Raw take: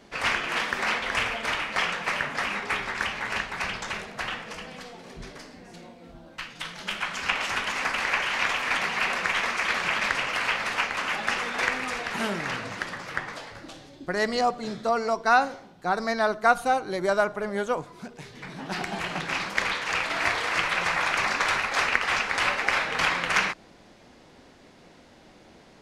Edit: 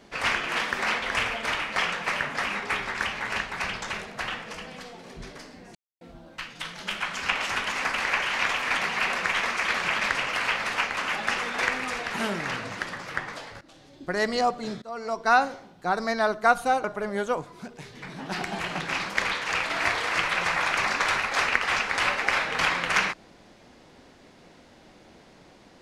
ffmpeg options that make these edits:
ffmpeg -i in.wav -filter_complex "[0:a]asplit=6[link_01][link_02][link_03][link_04][link_05][link_06];[link_01]atrim=end=5.75,asetpts=PTS-STARTPTS,afade=type=out:start_time=5.746:duration=0.004:curve=hsin[link_07];[link_02]atrim=start=5.75:end=6.01,asetpts=PTS-STARTPTS,volume=0[link_08];[link_03]atrim=start=6.01:end=13.61,asetpts=PTS-STARTPTS,afade=type=in:duration=0.004:curve=hsin,afade=type=out:start_time=7.596:duration=0.004:curve=hsin:silence=0.158489[link_09];[link_04]atrim=start=13.61:end=14.82,asetpts=PTS-STARTPTS,afade=type=in:duration=0.49:silence=0.158489,afade=type=out:start_time=1.206:duration=0.004:curve=hsin:silence=0.0668344[link_10];[link_05]atrim=start=14.82:end=16.842,asetpts=PTS-STARTPTS,afade=type=in:duration=0.48:silence=0.0668344[link_11];[link_06]atrim=start=17.238[link_12];[link_07][link_08][link_09][link_10][link_11]concat=n=5:v=0:a=1[link_13];[link_13][link_12]acrossfade=duration=0.004:curve1=hsin:curve2=hsin" out.wav

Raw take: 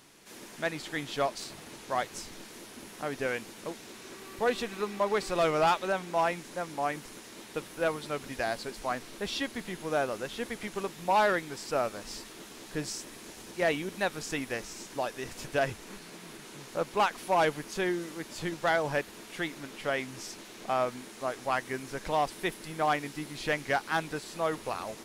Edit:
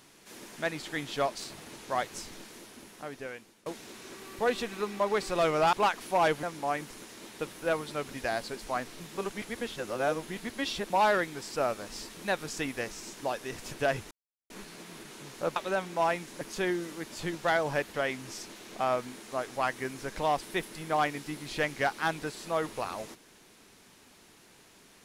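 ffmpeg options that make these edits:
ffmpeg -i in.wav -filter_complex "[0:a]asplit=11[link_01][link_02][link_03][link_04][link_05][link_06][link_07][link_08][link_09][link_10][link_11];[link_01]atrim=end=3.66,asetpts=PTS-STARTPTS,afade=type=out:start_time=2.31:duration=1.35:silence=0.112202[link_12];[link_02]atrim=start=3.66:end=5.732,asetpts=PTS-STARTPTS,afade=type=in:duration=0.004:curve=hsin:silence=0.112202[link_13];[link_03]atrim=start=16.898:end=17.602[link_14];[link_04]atrim=start=6.578:end=9.152[link_15];[link_05]atrim=start=9.148:end=11.052,asetpts=PTS-STARTPTS,areverse[link_16];[link_06]atrim=start=11.048:end=12.322[link_17];[link_07]atrim=start=13.898:end=15.84,asetpts=PTS-STARTPTS,afade=type=out:start_time=1.938:duration=0.004:curve=hsin,apad=pad_dur=0.39[link_18];[link_08]atrim=start=15.84:end=16.902,asetpts=PTS-STARTPTS,afade=type=in:duration=0.004:curve=hsin[link_19];[link_09]atrim=start=5.728:end=6.582[link_20];[link_10]atrim=start=17.598:end=19.132[link_21];[link_11]atrim=start=19.828[link_22];[link_12][link_13]concat=n=2:v=0:a=1[link_23];[link_23][link_14]acrossfade=duration=0.004:curve1=hsin:curve2=hsin[link_24];[link_24][link_15]acrossfade=duration=0.004:curve1=hsin:curve2=hsin[link_25];[link_25][link_16]acrossfade=duration=0.004:curve1=hsin:curve2=hsin[link_26];[link_26][link_17]acrossfade=duration=0.004:curve1=hsin:curve2=hsin[link_27];[link_18][link_19]concat=n=2:v=0:a=1[link_28];[link_27][link_28]acrossfade=duration=0.004:curve1=hsin:curve2=hsin[link_29];[link_29][link_20]acrossfade=duration=0.004:curve1=hsin:curve2=hsin[link_30];[link_30][link_21]acrossfade=duration=0.004:curve1=hsin:curve2=hsin[link_31];[link_31][link_22]acrossfade=duration=0.004:curve1=hsin:curve2=hsin" out.wav

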